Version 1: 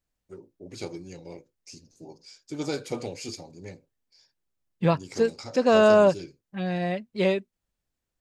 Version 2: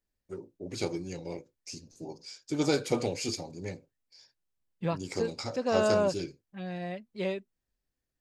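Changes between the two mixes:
first voice +3.5 dB; second voice -9.0 dB

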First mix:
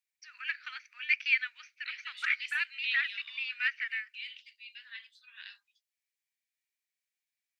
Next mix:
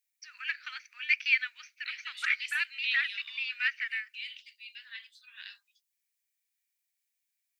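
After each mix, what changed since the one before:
master: add high shelf 6300 Hz +11.5 dB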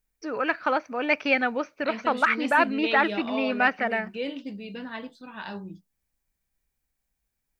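master: remove steep high-pass 1900 Hz 36 dB/oct

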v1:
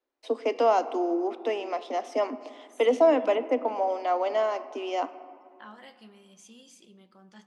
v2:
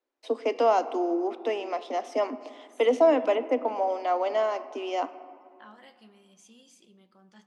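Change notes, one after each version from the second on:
second voice -3.5 dB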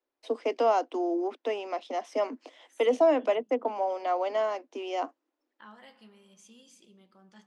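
first voice: send off

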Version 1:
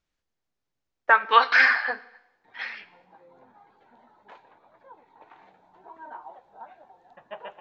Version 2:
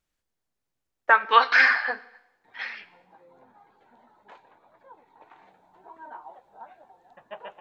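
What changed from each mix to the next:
background: send -7.5 dB; master: remove LPF 6700 Hz 24 dB/oct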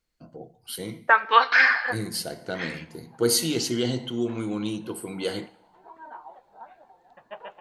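first voice: unmuted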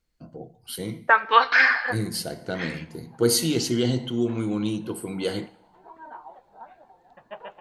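master: add low shelf 270 Hz +6 dB

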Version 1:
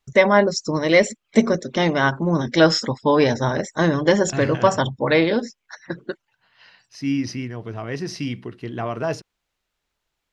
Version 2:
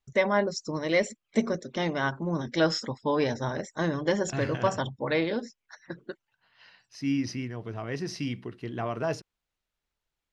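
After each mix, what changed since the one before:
first voice -9.5 dB; second voice -5.0 dB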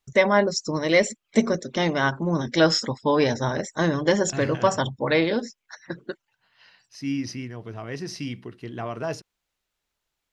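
first voice +5.5 dB; master: add high shelf 6000 Hz +6 dB

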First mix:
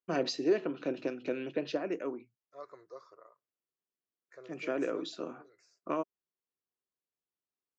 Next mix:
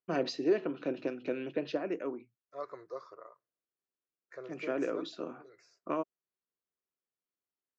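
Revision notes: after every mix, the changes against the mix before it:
second voice +6.5 dB; master: add air absorption 87 m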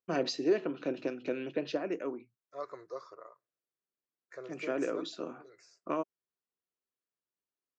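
master: remove air absorption 87 m

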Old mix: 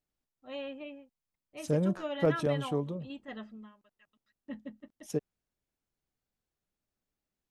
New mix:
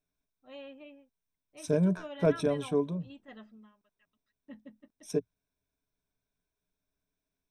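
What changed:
first voice -6.5 dB; second voice: add ripple EQ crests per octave 1.6, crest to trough 12 dB

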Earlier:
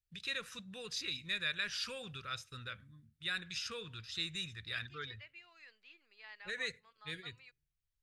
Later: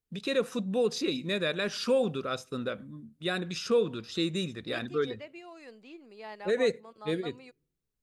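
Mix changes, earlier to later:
second voice: remove BPF 360–4800 Hz; master: remove EQ curve 100 Hz 0 dB, 240 Hz -24 dB, 700 Hz -22 dB, 1700 Hz -2 dB, 4900 Hz -3 dB, 9000 Hz -6 dB

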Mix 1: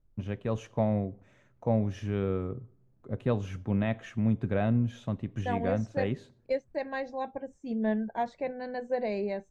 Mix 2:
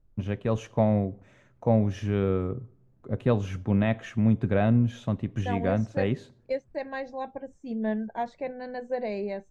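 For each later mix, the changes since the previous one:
first voice +4.5 dB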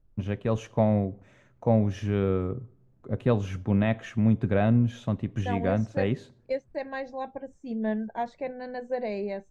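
none

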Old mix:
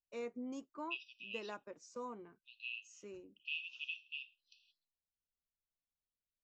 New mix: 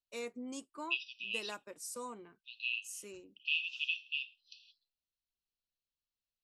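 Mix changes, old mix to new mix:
first voice: remove steep low-pass 6800 Hz 72 dB/oct; master: add bell 4300 Hz +12 dB 1.9 oct

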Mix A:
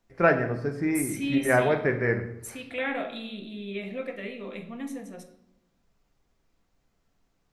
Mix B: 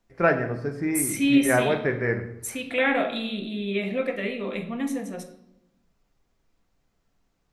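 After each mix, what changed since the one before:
second voice +7.5 dB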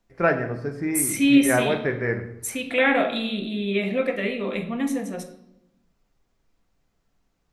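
second voice +3.0 dB

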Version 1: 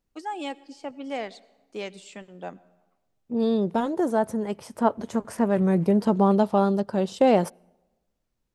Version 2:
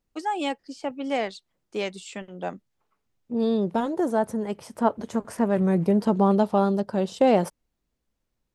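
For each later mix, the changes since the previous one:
first voice +7.0 dB; reverb: off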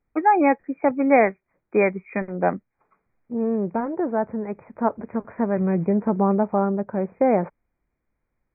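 first voice +10.5 dB; master: add brick-wall FIR low-pass 2500 Hz

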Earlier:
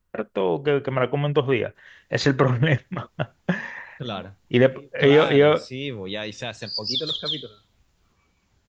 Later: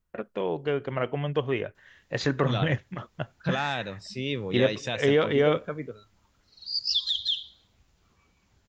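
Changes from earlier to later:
first voice -6.5 dB; second voice: entry -1.55 s

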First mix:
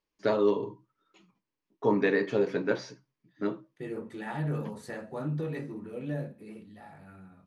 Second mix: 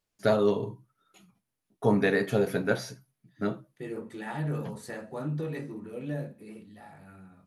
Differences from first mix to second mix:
first voice: remove speaker cabinet 200–6100 Hz, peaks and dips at 220 Hz -4 dB, 320 Hz +5 dB, 710 Hz -9 dB, 1000 Hz +5 dB, 1400 Hz -5 dB, 3700 Hz -3 dB; master: add high shelf 6500 Hz +7 dB

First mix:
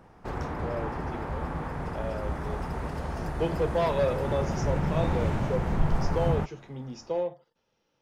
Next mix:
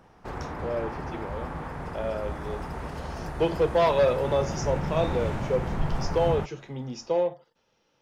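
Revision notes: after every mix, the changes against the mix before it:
speech +6.0 dB; master: add low shelf 480 Hz -3 dB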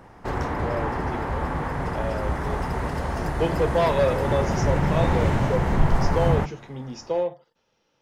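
background +7.0 dB; reverb: on, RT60 0.40 s

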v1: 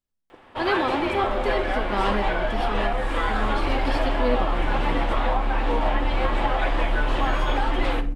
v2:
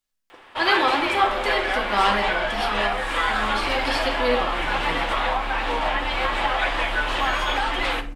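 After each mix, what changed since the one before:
speech: send +11.0 dB; master: add tilt shelf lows -8 dB, about 690 Hz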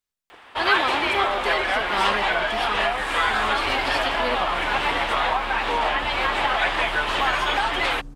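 first sound +3.5 dB; reverb: off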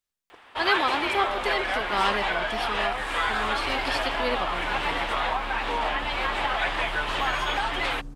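first sound -4.5 dB

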